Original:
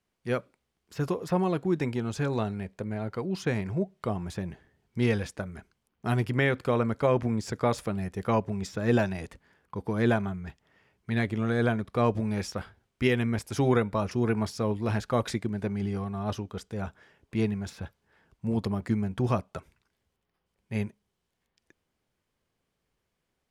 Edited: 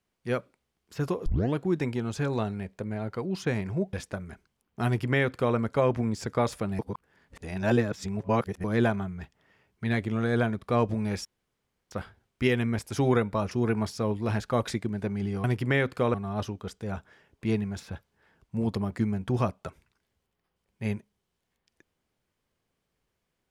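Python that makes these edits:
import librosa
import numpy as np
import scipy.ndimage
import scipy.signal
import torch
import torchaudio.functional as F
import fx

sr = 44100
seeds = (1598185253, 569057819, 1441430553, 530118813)

y = fx.edit(x, sr, fx.tape_start(start_s=1.26, length_s=0.3),
    fx.cut(start_s=3.93, length_s=1.26),
    fx.duplicate(start_s=6.12, length_s=0.7, to_s=16.04),
    fx.reverse_span(start_s=8.05, length_s=1.85),
    fx.insert_room_tone(at_s=12.51, length_s=0.66), tone=tone)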